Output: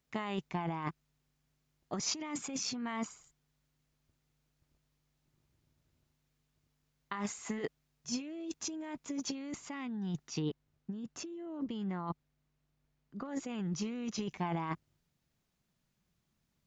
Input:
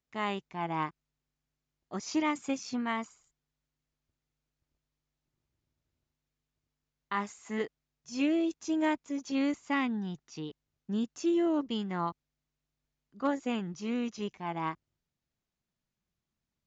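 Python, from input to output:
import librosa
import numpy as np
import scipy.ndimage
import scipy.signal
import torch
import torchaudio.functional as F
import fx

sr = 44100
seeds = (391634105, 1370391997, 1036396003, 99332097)

y = fx.peak_eq(x, sr, hz=160.0, db=4.0, octaves=0.72)
y = fx.over_compress(y, sr, threshold_db=-38.0, ratio=-1.0)
y = fx.high_shelf(y, sr, hz=3100.0, db=-8.5, at=(10.42, 13.28))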